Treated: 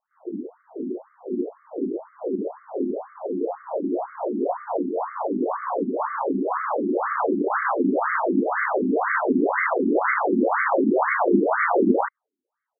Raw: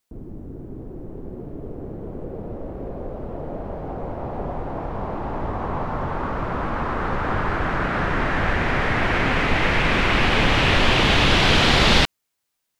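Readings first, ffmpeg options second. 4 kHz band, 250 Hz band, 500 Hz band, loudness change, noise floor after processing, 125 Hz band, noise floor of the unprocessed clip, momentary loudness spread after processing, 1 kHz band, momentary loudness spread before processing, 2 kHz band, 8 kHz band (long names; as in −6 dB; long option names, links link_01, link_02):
below −40 dB, +3.0 dB, +3.5 dB, −3.0 dB, −84 dBFS, below −15 dB, −77 dBFS, 12 LU, 0.0 dB, 20 LU, −5.0 dB, below −40 dB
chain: -af "tiltshelf=frequency=840:gain=5.5,asoftclip=type=tanh:threshold=-12dB,aecho=1:1:11|31:0.376|0.473,afftfilt=real='re*between(b*sr/1024,270*pow(1600/270,0.5+0.5*sin(2*PI*2*pts/sr))/1.41,270*pow(1600/270,0.5+0.5*sin(2*PI*2*pts/sr))*1.41)':imag='im*between(b*sr/1024,270*pow(1600/270,0.5+0.5*sin(2*PI*2*pts/sr))/1.41,270*pow(1600/270,0.5+0.5*sin(2*PI*2*pts/sr))*1.41)':win_size=1024:overlap=0.75,volume=7dB"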